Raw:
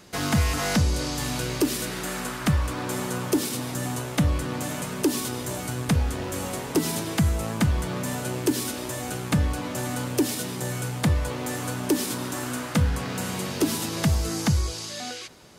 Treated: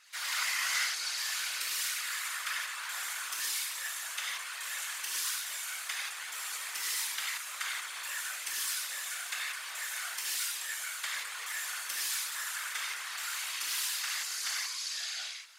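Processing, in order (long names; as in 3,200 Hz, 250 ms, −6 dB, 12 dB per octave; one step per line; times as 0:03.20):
four-pole ladder high-pass 1,300 Hz, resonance 25%
reverb whose tail is shaped and stops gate 200 ms flat, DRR −6 dB
random phases in short frames
level −3 dB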